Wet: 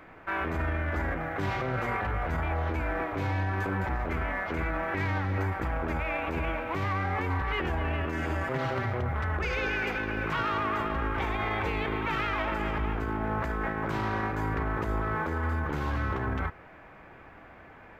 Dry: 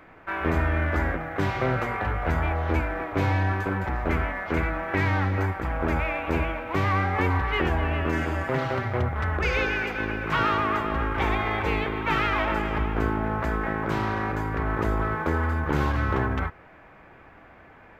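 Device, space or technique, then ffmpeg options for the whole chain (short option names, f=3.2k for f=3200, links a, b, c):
stacked limiters: -af "alimiter=limit=-18dB:level=0:latency=1:release=91,alimiter=limit=-22dB:level=0:latency=1:release=19"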